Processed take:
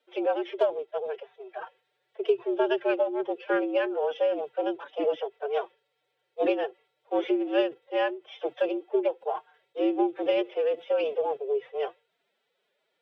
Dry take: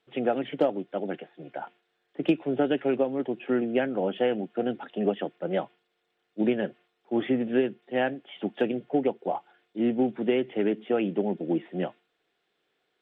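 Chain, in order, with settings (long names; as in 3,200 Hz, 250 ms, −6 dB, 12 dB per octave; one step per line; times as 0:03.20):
frequency shifter +75 Hz
phase-vocoder pitch shift with formants kept +9.5 semitones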